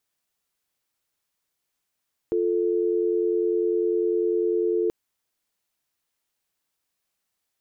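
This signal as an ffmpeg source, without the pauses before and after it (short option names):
-f lavfi -i "aevalsrc='0.0708*(sin(2*PI*350*t)+sin(2*PI*440*t))':d=2.58:s=44100"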